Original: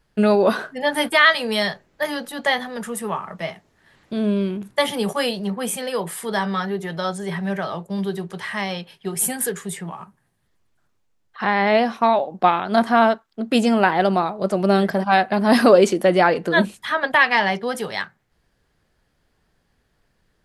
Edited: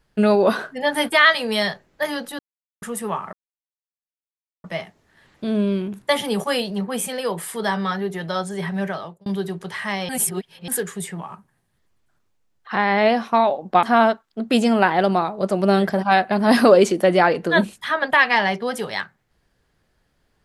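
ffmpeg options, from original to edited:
-filter_complex "[0:a]asplit=8[s0][s1][s2][s3][s4][s5][s6][s7];[s0]atrim=end=2.39,asetpts=PTS-STARTPTS,afade=t=out:st=2.386:d=0.004:c=hsin[s8];[s1]atrim=start=2.39:end=2.82,asetpts=PTS-STARTPTS,volume=0[s9];[s2]atrim=start=2.82:end=3.33,asetpts=PTS-STARTPTS,afade=t=in:d=0.004:c=hsin,afade=t=out:st=0.506:d=0.004:c=hsin,apad=pad_dur=1.31[s10];[s3]atrim=start=3.33:end=7.95,asetpts=PTS-STARTPTS,afade=t=in:d=0.004:c=hsin,afade=t=out:st=4.22:d=0.4[s11];[s4]atrim=start=7.95:end=8.782,asetpts=PTS-STARTPTS,afade=t=in:d=0.004:c=hsin[s12];[s5]atrim=start=8.778:end=9.372,asetpts=PTS-STARTPTS,areverse[s13];[s6]atrim=start=9.368:end=12.522[s14];[s7]atrim=start=12.838[s15];[s8][s9][s10][s11][s12]concat=n=5:v=0:a=1[s16];[s16][s13]acrossfade=d=0.004:c1=hsin:c2=hsin[s17];[s17][s14]acrossfade=d=0.004:c1=hsin:c2=hsin[s18];[s18][s15]acrossfade=d=0.004:c1=hsin:c2=hsin"

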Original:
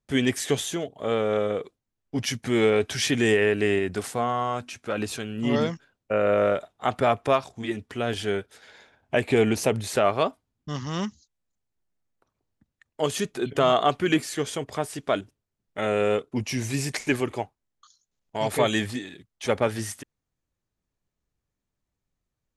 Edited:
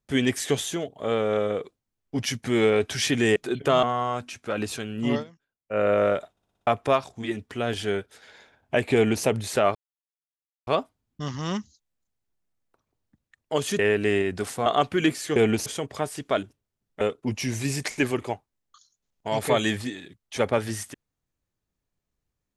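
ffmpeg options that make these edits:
-filter_complex "[0:a]asplit=17[s0][s1][s2][s3][s4][s5][s6][s7][s8][s9][s10][s11][s12][s13][s14][s15][s16];[s0]atrim=end=3.362[s17];[s1]atrim=start=13.268:end=13.742[s18];[s2]atrim=start=4.228:end=5.64,asetpts=PTS-STARTPTS,afade=t=out:st=1.292:d=0.12:silence=0.0944061[s19];[s3]atrim=start=5.64:end=6.07,asetpts=PTS-STARTPTS,volume=0.0944[s20];[s4]atrim=start=6.07:end=6.772,asetpts=PTS-STARTPTS,afade=t=in:d=0.12:silence=0.0944061[s21];[s5]atrim=start=6.708:end=6.772[s22];[s6]atrim=start=6.708:end=6.772[s23];[s7]atrim=start=6.708:end=6.772[s24];[s8]atrim=start=6.708:end=6.772[s25];[s9]atrim=start=6.708:end=6.772[s26];[s10]atrim=start=7.068:end=10.15,asetpts=PTS-STARTPTS,afade=t=out:st=3.078:d=0.004:c=hsin,apad=pad_dur=0.92[s27];[s11]atrim=start=10.15:end=13.272,asetpts=PTS-STARTPTS,afade=t=in:d=0.004:c=hsin[s28];[s12]atrim=start=3.358:end=4.232[s29];[s13]atrim=start=13.738:end=14.442[s30];[s14]atrim=start=9.338:end=9.642[s31];[s15]atrim=start=14.438:end=15.792[s32];[s16]atrim=start=16.098[s33];[s17][s18]acrossfade=d=0.004:c1=hsin:c2=hsin[s34];[s19][s20][s21]concat=n=3:v=0:a=1[s35];[s34][s35]acrossfade=d=0.004:c1=hsin:c2=hsin[s36];[s36][s22]acrossfade=d=0.004:c1=hsin:c2=hsin[s37];[s37][s23]acrossfade=d=0.004:c1=hsin:c2=hsin[s38];[s38][s24]acrossfade=d=0.004:c1=hsin:c2=hsin[s39];[s39][s25]acrossfade=d=0.004:c1=hsin:c2=hsin[s40];[s40][s26]acrossfade=d=0.004:c1=hsin:c2=hsin[s41];[s27][s28]concat=n=2:v=0:a=1[s42];[s41][s42]acrossfade=d=0.004:c1=hsin:c2=hsin[s43];[s43][s29]acrossfade=d=0.004:c1=hsin:c2=hsin[s44];[s44][s30]acrossfade=d=0.004:c1=hsin:c2=hsin[s45];[s45][s31]acrossfade=d=0.004:c1=hsin:c2=hsin[s46];[s46][s32]acrossfade=d=0.004:c1=hsin:c2=hsin[s47];[s47][s33]acrossfade=d=0.004:c1=hsin:c2=hsin"

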